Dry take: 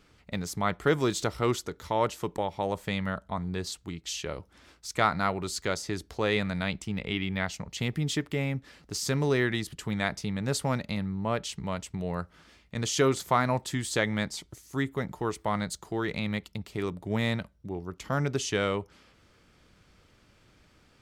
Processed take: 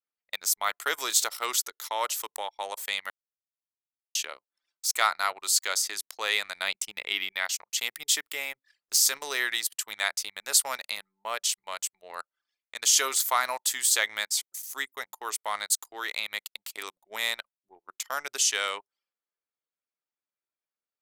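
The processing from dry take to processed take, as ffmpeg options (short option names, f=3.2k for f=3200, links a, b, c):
-filter_complex "[0:a]asettb=1/sr,asplit=3[a][b][c];[a]atrim=end=6.564[d];[b]atrim=start=6.56:end=7.32,asetpts=PTS-STARTPTS,afade=t=in:d=0.004:c=qsin,afade=t=out:st=0.756:d=0.004:c=qsin,lowshelf=f=470:g=6[e];[c]atrim=start=7.316[f];[d][e]acrossfade=d=0.004:c1=hsin:c2=qsin[g];[g][f]acrossfade=d=0.004:c1=qsin:c2=hsin,asplit=3[h][i][j];[h]atrim=end=3.1,asetpts=PTS-STARTPTS,afade=t=out:st=3.096:d=0.004:c=hsin[k];[i]atrim=start=3.1:end=4.15,asetpts=PTS-STARTPTS,volume=0[l];[j]atrim=start=4.15,asetpts=PTS-STARTPTS,afade=t=in:d=0.004:c=hsin[m];[k][l][m]concat=n=3:v=0:a=1,highpass=760,aemphasis=mode=production:type=riaa,anlmdn=0.251,volume=1dB"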